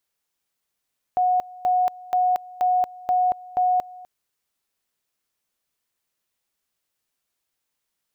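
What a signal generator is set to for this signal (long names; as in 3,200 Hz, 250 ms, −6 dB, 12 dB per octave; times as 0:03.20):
tone at two levels in turn 730 Hz −16.5 dBFS, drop 21.5 dB, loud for 0.23 s, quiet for 0.25 s, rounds 6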